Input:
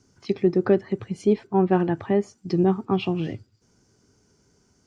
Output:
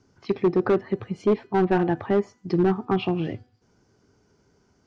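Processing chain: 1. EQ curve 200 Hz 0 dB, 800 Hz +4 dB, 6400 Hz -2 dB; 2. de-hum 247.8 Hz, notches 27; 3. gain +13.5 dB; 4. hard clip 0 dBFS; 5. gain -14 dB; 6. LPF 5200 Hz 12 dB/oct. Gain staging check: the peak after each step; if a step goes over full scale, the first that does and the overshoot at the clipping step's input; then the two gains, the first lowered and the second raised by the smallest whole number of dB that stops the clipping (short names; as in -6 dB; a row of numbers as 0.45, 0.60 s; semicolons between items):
-5.0, -5.0, +8.5, 0.0, -14.0, -14.0 dBFS; step 3, 8.5 dB; step 3 +4.5 dB, step 5 -5 dB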